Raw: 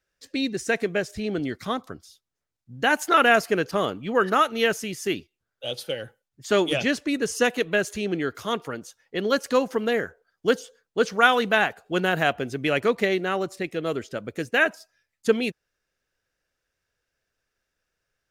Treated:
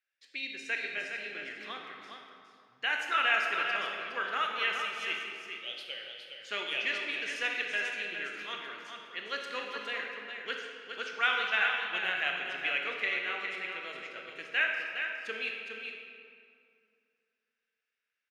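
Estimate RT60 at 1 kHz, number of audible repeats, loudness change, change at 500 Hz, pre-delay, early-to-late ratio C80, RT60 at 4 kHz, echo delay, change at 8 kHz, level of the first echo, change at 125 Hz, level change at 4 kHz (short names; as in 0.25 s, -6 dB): 2.4 s, 1, -8.5 dB, -19.0 dB, 20 ms, 1.5 dB, 1.5 s, 0.412 s, -16.0 dB, -6.5 dB, under -25 dB, -4.0 dB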